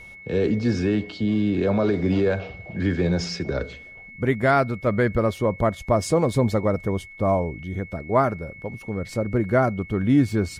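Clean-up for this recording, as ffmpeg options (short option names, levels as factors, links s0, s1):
-af "bandreject=f=2200:w=30"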